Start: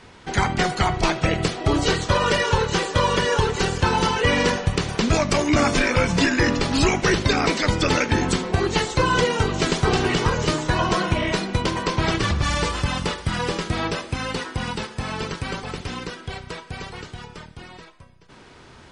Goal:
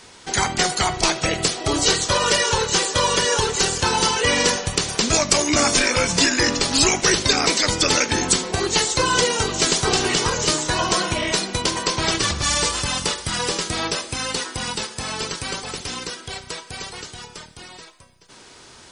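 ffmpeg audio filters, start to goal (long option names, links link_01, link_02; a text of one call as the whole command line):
ffmpeg -i in.wav -af "bass=frequency=250:gain=-6,treble=frequency=4000:gain=14" out.wav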